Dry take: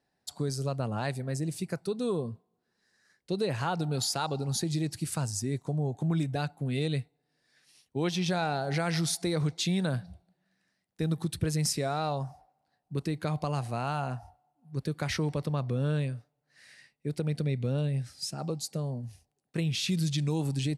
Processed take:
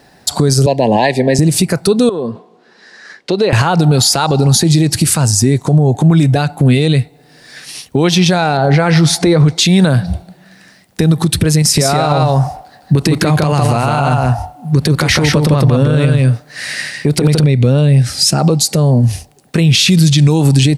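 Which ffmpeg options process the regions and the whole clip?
-filter_complex "[0:a]asettb=1/sr,asplit=3[s0][s1][s2];[s0]atrim=end=0.664[s3];[s1]atrim=start=0.66:end=1.39,asetpts=PTS-STARTPTS,afade=t=in:d=0.004:c=qsin,afade=t=out:st=0.726:d=0.004:c=qsin,asuperstop=centerf=1300:order=12:qfactor=2,acrossover=split=220 5300:gain=0.126 1 0.158[s4][s5][s6];[s4][s5][s6]amix=inputs=3:normalize=0[s7];[s2]atrim=start=1.386[s8];[s3][s7]acrossfade=d=0.004:c1=hsin:c2=qsin[s9];[s9][s8]acrossfade=d=0.004:c1=qsin:c2=hsin,asettb=1/sr,asplit=3[s10][s11][s12];[s10]atrim=end=2.094[s13];[s11]atrim=start=2.09:end=3.53,asetpts=PTS-STARTPTS,afade=t=in:d=0.004:c=qsin,afade=t=out:st=1.436:d=0.004:c=qsin,acompressor=threshold=0.00794:ratio=4:attack=3.2:release=140:knee=1:detection=peak,highpass=270,lowpass=4600[s14];[s12]atrim=start=3.526[s15];[s13][s14]acrossfade=d=0.004:c1=hsin:c2=qsin[s16];[s16][s15]acrossfade=d=0.004:c1=qsin:c2=hsin,asettb=1/sr,asplit=3[s17][s18][s19];[s17]atrim=end=8.574[s20];[s18]atrim=start=8.57:end=9.48,asetpts=PTS-STARTPTS,afade=t=in:d=0.004:c=qsin,afade=t=out:st=0.906:d=0.004:c=qsin,lowpass=f=2100:p=1,asplit=2[s21][s22];[s22]adelay=14,volume=0.282[s23];[s21][s23]amix=inputs=2:normalize=0,atrim=end_sample=40131[s24];[s19]atrim=start=9.476[s25];[s20][s24]acrossfade=d=0.004:c1=hsin:c2=qsin[s26];[s26][s25]acrossfade=d=0.004:c1=qsin:c2=hsin,asettb=1/sr,asplit=3[s27][s28][s29];[s27]atrim=end=11.624[s30];[s28]atrim=start=11.62:end=17.44,asetpts=PTS-STARTPTS,afade=t=in:d=0.004:c=qsin,afade=t=out:st=5.816:d=0.004:c=qsin,acompressor=threshold=0.0282:ratio=4:attack=3.2:release=140:knee=1:detection=peak,aecho=1:1:157:0.708,atrim=end_sample=256662[s31];[s29]atrim=start=17.436[s32];[s30][s31]acrossfade=d=0.004:c1=hsin:c2=qsin[s33];[s33][s32]acrossfade=d=0.004:c1=qsin:c2=hsin,acompressor=threshold=0.0126:ratio=4,alimiter=level_in=47.3:limit=0.891:release=50:level=0:latency=1,volume=0.891"

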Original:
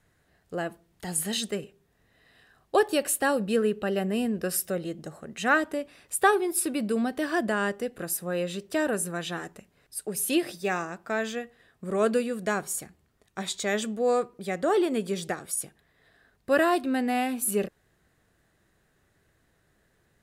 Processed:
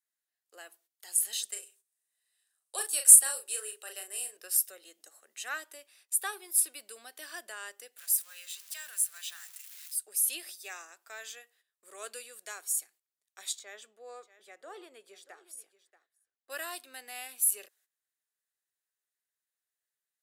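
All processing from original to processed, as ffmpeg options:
-filter_complex "[0:a]asettb=1/sr,asplit=3[s0][s1][s2];[s0]atrim=end=1.524[s3];[s1]atrim=start=1.52:end=4.37,asetpts=PTS-STARTPTS,afade=t=in:d=0.004:c=qsin,afade=t=out:st=2.846:d=0.004:c=qsin,highpass=f=310:w=0.5412,highpass=f=310:w=1.3066,equalizer=f=8800:t=o:w=0.74:g=14,asplit=2[s4][s5];[s5]adelay=37,volume=0.531[s6];[s4][s6]amix=inputs=2:normalize=0,atrim=end_sample=125685[s7];[s2]atrim=start=4.366[s8];[s3][s7]acrossfade=d=0.004:c1=hsin:c2=qsin[s9];[s9][s8]acrossfade=d=0.004:c1=qsin:c2=hsin,asettb=1/sr,asplit=3[s10][s11][s12];[s10]atrim=end=7.984[s13];[s11]atrim=start=7.98:end=9.97,asetpts=PTS-STARTPTS,afade=t=in:d=0.004:c=qsin,afade=t=out:st=1.986:d=0.004:c=qsin,aeval=exprs='val(0)+0.5*0.0126*sgn(val(0))':c=same,highpass=1500[s14];[s12]atrim=start=9.966[s15];[s13][s14]acrossfade=d=0.004:c1=hsin:c2=qsin[s16];[s16][s15]acrossfade=d=0.004:c1=qsin:c2=hsin,asettb=1/sr,asplit=3[s17][s18][s19];[s17]atrim=end=13.594[s20];[s18]atrim=start=13.59:end=16.5,asetpts=PTS-STARTPTS,afade=t=in:d=0.004:c=qsin,afade=t=out:st=2.906:d=0.004:c=qsin,lowpass=f=1100:p=1,aecho=1:1:632:0.168,atrim=end_sample=128331[s21];[s19]atrim=start=16.496[s22];[s20][s21]acrossfade=d=0.004:c1=hsin:c2=qsin[s23];[s23][s22]acrossfade=d=0.004:c1=qsin:c2=hsin,agate=range=0.2:threshold=0.00224:ratio=16:detection=peak,highpass=f=330:w=0.5412,highpass=f=330:w=1.3066,aderivative"

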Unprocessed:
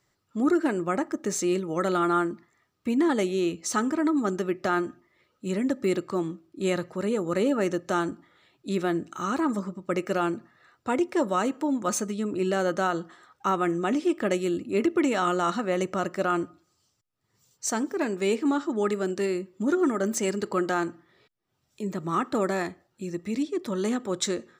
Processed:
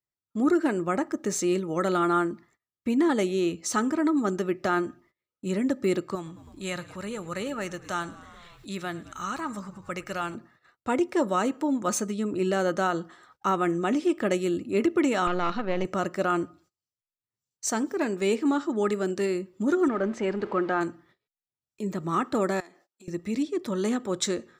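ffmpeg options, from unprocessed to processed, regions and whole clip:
-filter_complex "[0:a]asettb=1/sr,asplit=3[s0][s1][s2];[s0]atrim=end=6.154[s3];[s1]atrim=start=6.15:end=10.35,asetpts=PTS-STARTPTS,afade=t=in:d=0.004:c=qsin,afade=t=out:st=4.196:d=0.004:c=qsin,equalizer=f=340:t=o:w=2:g=-11.5,asplit=6[s4][s5][s6][s7][s8][s9];[s5]adelay=107,afreqshift=-41,volume=0.106[s10];[s6]adelay=214,afreqshift=-82,volume=0.0646[s11];[s7]adelay=321,afreqshift=-123,volume=0.0394[s12];[s8]adelay=428,afreqshift=-164,volume=0.024[s13];[s9]adelay=535,afreqshift=-205,volume=0.0146[s14];[s4][s10][s11][s12][s13][s14]amix=inputs=6:normalize=0,atrim=end_sample=185220,acompressor=mode=upward:threshold=0.0126:ratio=2.5:attack=3.2:release=140:knee=2.83:detection=peak[s15];[s2]atrim=start=10.346[s16];[s3][s15]acrossfade=d=0.004:c1=hsin:c2=qsin[s17];[s17][s16]acrossfade=d=0.004:c1=qsin:c2=hsin,asettb=1/sr,asplit=3[s18][s19][s20];[s18]atrim=end=15.274[s21];[s19]atrim=start=15.27:end=15.85,asetpts=PTS-STARTPTS,afade=t=in:d=0.004:c=qsin,afade=t=out:st=0.576:d=0.004:c=qsin,aeval=exprs='if(lt(val(0),0),0.447*val(0),val(0))':c=same,lowpass=f=4700:w=0.5412,lowpass=f=4700:w=1.3066[s22];[s20]atrim=start=15.846[s23];[s21][s22]acrossfade=d=0.004:c1=hsin:c2=qsin[s24];[s24][s23]acrossfade=d=0.004:c1=qsin:c2=hsin,asettb=1/sr,asplit=3[s25][s26][s27];[s25]atrim=end=19.884[s28];[s26]atrim=start=19.88:end=20.81,asetpts=PTS-STARTPTS,afade=t=in:d=0.004:c=qsin,afade=t=out:st=0.926:d=0.004:c=qsin,aeval=exprs='val(0)+0.5*0.0133*sgn(val(0))':c=same,lowpass=2300,lowshelf=f=160:g=-7.5[s29];[s27]atrim=start=20.806[s30];[s28][s29]acrossfade=d=0.004:c1=hsin:c2=qsin[s31];[s31][s30]acrossfade=d=0.004:c1=qsin:c2=hsin,asettb=1/sr,asplit=3[s32][s33][s34];[s32]atrim=end=22.604[s35];[s33]atrim=start=22.6:end=23.08,asetpts=PTS-STARTPTS,afade=t=in:d=0.004:c=qsin,afade=t=out:st=0.476:d=0.004:c=qsin,equalizer=f=5900:t=o:w=0.82:g=5.5,acompressor=threshold=0.00891:ratio=20:attack=3.2:release=140:knee=1:detection=peak,highpass=370[s36];[s34]atrim=start=23.076[s37];[s35][s36]acrossfade=d=0.004:c1=hsin:c2=qsin[s38];[s38][s37]acrossfade=d=0.004:c1=qsin:c2=hsin,agate=range=0.0501:threshold=0.00141:ratio=16:detection=peak,lowshelf=f=61:g=6.5"

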